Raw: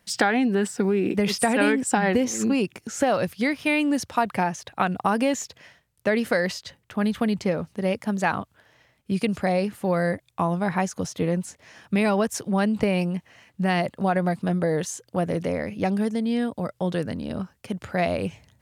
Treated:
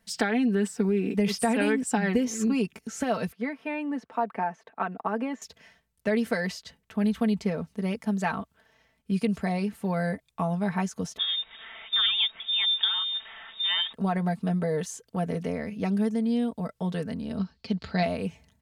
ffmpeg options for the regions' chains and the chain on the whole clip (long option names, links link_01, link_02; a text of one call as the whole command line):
ffmpeg -i in.wav -filter_complex "[0:a]asettb=1/sr,asplit=3[link_01][link_02][link_03];[link_01]atrim=end=3.324[link_04];[link_02]atrim=start=3.32:end=5.42,asetpts=PTS-STARTPTS,afade=type=in:duration=0.004:curve=qsin,afade=type=out:start_time=2.096:duration=0.004:curve=qsin,acrossover=split=6300[link_05][link_06];[link_06]acompressor=threshold=-47dB:ratio=4:attack=1:release=60[link_07];[link_05][link_07]amix=inputs=2:normalize=0,acrossover=split=230 2100:gain=0.0708 1 0.126[link_08][link_09][link_10];[link_08][link_09][link_10]amix=inputs=3:normalize=0[link_11];[link_03]atrim=start=5.416[link_12];[link_04][link_11]acrossfade=duration=0.004:curve1=hsin:curve2=qsin[link_13];[link_13][link_12]acrossfade=duration=0.004:curve1=qsin:curve2=hsin,asettb=1/sr,asplit=3[link_14][link_15][link_16];[link_14]atrim=end=11.174[link_17];[link_15]atrim=start=11.17:end=13.93,asetpts=PTS-STARTPTS,afade=type=in:duration=0.004:curve=qsin,afade=type=out:start_time=2.756:duration=0.004:curve=qsin,aeval=exprs='val(0)+0.5*0.02*sgn(val(0))':channel_layout=same,lowpass=frequency=3200:width_type=q:width=0.5098,lowpass=frequency=3200:width_type=q:width=0.6013,lowpass=frequency=3200:width_type=q:width=0.9,lowpass=frequency=3200:width_type=q:width=2.563,afreqshift=-3800[link_18];[link_16]atrim=start=13.926[link_19];[link_17][link_18]acrossfade=duration=0.004:curve1=hsin:curve2=qsin[link_20];[link_20][link_19]acrossfade=duration=0.004:curve1=qsin:curve2=hsin,asettb=1/sr,asplit=3[link_21][link_22][link_23];[link_21]atrim=end=17.384[link_24];[link_22]atrim=start=17.38:end=18.03,asetpts=PTS-STARTPTS,afade=type=in:duration=0.004:curve=qsin,afade=type=out:start_time=0.646:duration=0.004:curve=qsin,lowpass=frequency=4400:width_type=q:width=8.1,lowshelf=frequency=320:gain=5[link_25];[link_23]atrim=start=18.026[link_26];[link_24][link_25]acrossfade=duration=0.004:curve1=hsin:curve2=qsin[link_27];[link_27][link_26]acrossfade=duration=0.004:curve1=qsin:curve2=hsin,lowshelf=frequency=130:gain=6.5,aecho=1:1:4.5:0.68,volume=-7dB" out.wav